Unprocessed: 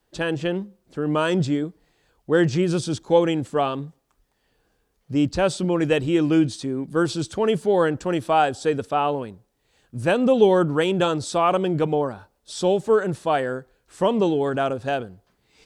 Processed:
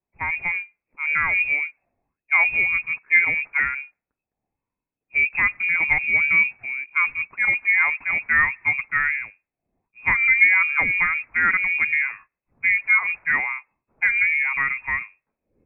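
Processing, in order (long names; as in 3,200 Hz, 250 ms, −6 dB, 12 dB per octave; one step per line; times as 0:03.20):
voice inversion scrambler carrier 2,600 Hz
low-pass that shuts in the quiet parts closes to 380 Hz, open at −16 dBFS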